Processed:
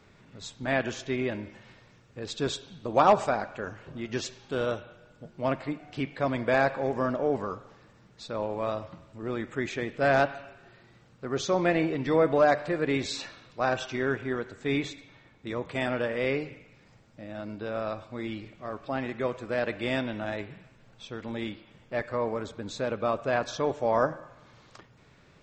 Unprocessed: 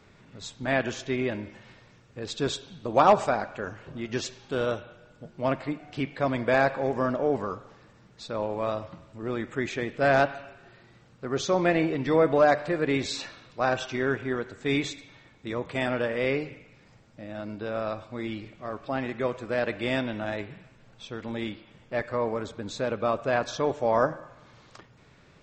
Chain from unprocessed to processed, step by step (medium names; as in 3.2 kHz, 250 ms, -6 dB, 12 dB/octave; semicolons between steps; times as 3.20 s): 14.66–15.47 s: treble shelf 4.5 kHz -7.5 dB; trim -1.5 dB